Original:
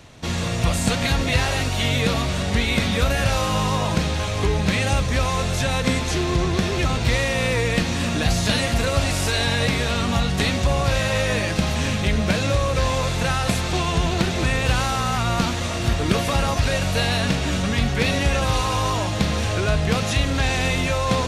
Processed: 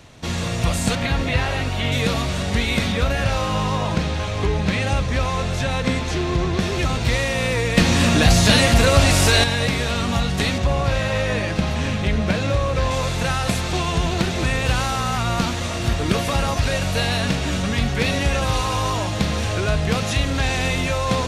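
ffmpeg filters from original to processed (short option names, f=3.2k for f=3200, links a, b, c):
-filter_complex "[0:a]asettb=1/sr,asplit=3[a][b][c];[a]atrim=end=0.954[d];[b]atrim=start=0.95:end=1.92,asetpts=PTS-STARTPTS,afade=t=in:d=0.004:c=qsin,afade=t=out:st=0.966:d=0.004:c=qsin,acrossover=split=3700[e][f];[f]acompressor=threshold=-41dB:ratio=4:attack=1:release=60[g];[e][g]amix=inputs=2:normalize=0[h];[c]atrim=start=1.916[i];[d][h]acrossfade=d=0.004:c1=hsin:c2=qsin[j];[j][i]acrossfade=d=0.004:c1=qsin:c2=hsin,asettb=1/sr,asplit=3[k][l][m];[k]atrim=end=2.924[n];[l]atrim=start=2.92:end=6.6,asetpts=PTS-STARTPTS,afade=t=in:d=0.004:c=qsin,afade=t=out:st=3.676:d=0.004:c=qsin,highshelf=f=7.2k:g=-11[o];[m]atrim=start=6.596[p];[n][o]acrossfade=d=0.004:c1=hsin:c2=qsin[q];[q][p]acrossfade=d=0.004:c1=qsin:c2=hsin,asettb=1/sr,asplit=3[r][s][t];[r]atrim=end=7.774[u];[s]atrim=start=7.77:end=9.44,asetpts=PTS-STARTPTS,afade=t=in:d=0.004:c=qsin,afade=t=out:st=1.666:d=0.004:c=qsin,acontrast=79[v];[t]atrim=start=9.436[w];[u][v]acrossfade=d=0.004:c1=hsin:c2=qsin[x];[x][w]acrossfade=d=0.004:c1=qsin:c2=hsin,asettb=1/sr,asplit=3[y][z][aa];[y]atrim=end=10.584[ab];[z]atrim=start=10.58:end=12.91,asetpts=PTS-STARTPTS,afade=t=in:d=0.004:c=qsin,afade=t=out:st=2.326:d=0.004:c=qsin,aemphasis=mode=reproduction:type=cd[ac];[aa]atrim=start=12.906[ad];[ab][ac]acrossfade=d=0.004:c1=hsin:c2=qsin[ae];[ae][ad]acrossfade=d=0.004:c1=qsin:c2=hsin"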